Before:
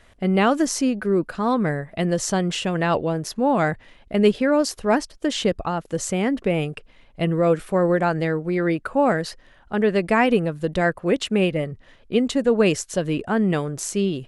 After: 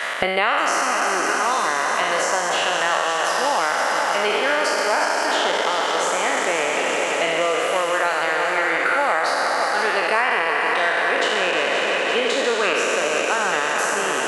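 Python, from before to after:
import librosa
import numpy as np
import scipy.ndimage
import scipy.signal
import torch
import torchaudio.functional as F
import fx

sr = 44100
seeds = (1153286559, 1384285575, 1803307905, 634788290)

y = fx.spec_trails(x, sr, decay_s=2.65)
y = scipy.signal.sosfilt(scipy.signal.butter(2, 1000.0, 'highpass', fs=sr, output='sos'), y)
y = fx.high_shelf(y, sr, hz=2500.0, db=-10.5)
y = fx.echo_heads(y, sr, ms=173, heads='second and third', feedback_pct=69, wet_db=-9.5)
y = fx.band_squash(y, sr, depth_pct=100)
y = y * 10.0 ** (4.5 / 20.0)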